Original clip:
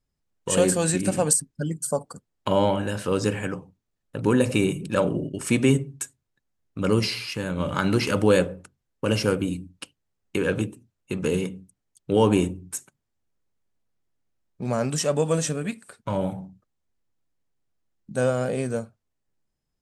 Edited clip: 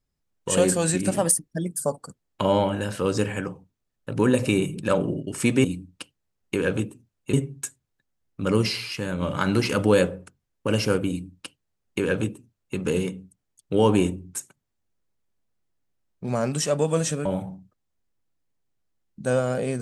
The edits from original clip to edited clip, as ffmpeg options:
ffmpeg -i in.wav -filter_complex "[0:a]asplit=6[link_01][link_02][link_03][link_04][link_05][link_06];[link_01]atrim=end=1.144[link_07];[link_02]atrim=start=1.14:end=1.87,asetpts=PTS-STARTPTS,asetrate=48510,aresample=44100,atrim=end_sample=29266,asetpts=PTS-STARTPTS[link_08];[link_03]atrim=start=1.866:end=5.712[link_09];[link_04]atrim=start=9.458:end=11.152[link_10];[link_05]atrim=start=5.708:end=15.632[link_11];[link_06]atrim=start=16.158[link_12];[link_07][link_08]acrossfade=duration=0.004:curve1=hsin:curve2=hsin[link_13];[link_13][link_09]acrossfade=duration=0.004:curve1=hsin:curve2=hsin[link_14];[link_14][link_10]acrossfade=duration=0.004:curve1=hsin:curve2=hsin[link_15];[link_15][link_11]acrossfade=duration=0.004:curve1=hsin:curve2=hsin[link_16];[link_16][link_12]acrossfade=duration=0.004:curve1=hsin:curve2=hsin" out.wav

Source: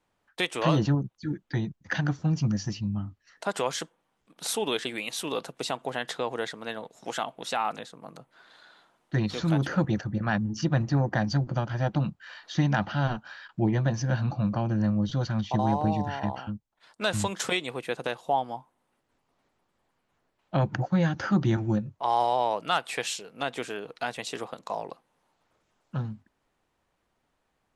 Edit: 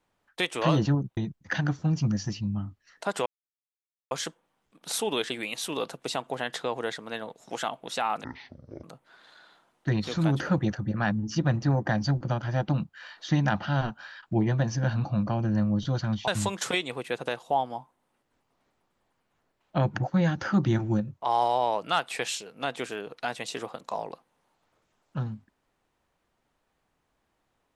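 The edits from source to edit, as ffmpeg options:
ffmpeg -i in.wav -filter_complex "[0:a]asplit=6[link_01][link_02][link_03][link_04][link_05][link_06];[link_01]atrim=end=1.172[link_07];[link_02]atrim=start=1.568:end=3.66,asetpts=PTS-STARTPTS,afade=type=out:start_time=2.088:duration=0.004:curve=hsin,apad=pad_dur=0.85[link_08];[link_03]atrim=start=3.66:end=7.794,asetpts=PTS-STARTPTS,afade=type=in:duration=0.004:curve=hsin[link_09];[link_04]atrim=start=7.79:end=8.1,asetpts=PTS-STARTPTS,asetrate=22932,aresample=44100,atrim=end_sample=26290,asetpts=PTS-STARTPTS[link_10];[link_05]atrim=start=8.096:end=15.542[link_11];[link_06]atrim=start=17.058[link_12];[link_08][link_09]concat=n=2:v=0:a=1[link_13];[link_07][link_13]acrossfade=duration=0.004:curve1=hsin:curve2=hsin[link_14];[link_14][link_10]acrossfade=duration=0.004:curve1=hsin:curve2=hsin[link_15];[link_15][link_11]acrossfade=duration=0.004:curve1=hsin:curve2=hsin[link_16];[link_16][link_12]acrossfade=duration=0.004:curve1=hsin:curve2=hsin" out.wav

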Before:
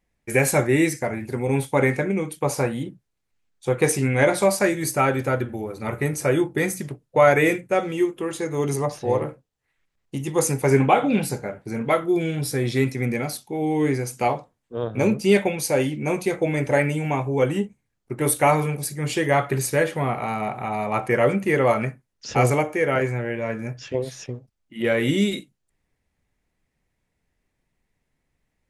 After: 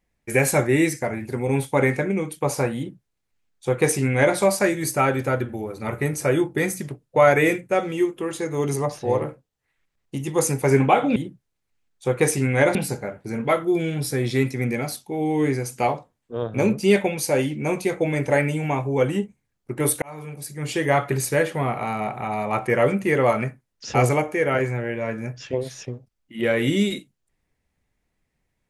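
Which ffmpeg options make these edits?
ffmpeg -i in.wav -filter_complex "[0:a]asplit=4[link_01][link_02][link_03][link_04];[link_01]atrim=end=11.162[link_05];[link_02]atrim=start=2.768:end=4.362[link_06];[link_03]atrim=start=11.158:end=18.43,asetpts=PTS-STARTPTS,afade=type=out:start_time=7.268:duration=0.004:curve=hsin[link_07];[link_04]atrim=start=18.43,asetpts=PTS-STARTPTS,afade=type=in:duration=0.86[link_08];[link_05][link_06]acrossfade=duration=0.004:curve1=hsin:curve2=hsin[link_09];[link_07][link_08]concat=n=2:v=0:a=1[link_10];[link_09][link_10]acrossfade=duration=0.004:curve1=hsin:curve2=hsin" out.wav

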